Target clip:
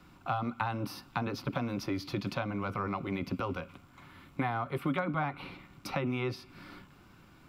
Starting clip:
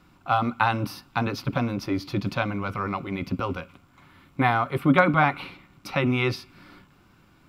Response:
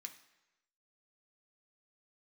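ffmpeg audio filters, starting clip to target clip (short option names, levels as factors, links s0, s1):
-filter_complex "[0:a]acrossover=split=190|1200[s0][s1][s2];[s0]acompressor=threshold=0.01:ratio=4[s3];[s1]acompressor=threshold=0.02:ratio=4[s4];[s2]acompressor=threshold=0.00794:ratio=4[s5];[s3][s4][s5]amix=inputs=3:normalize=0"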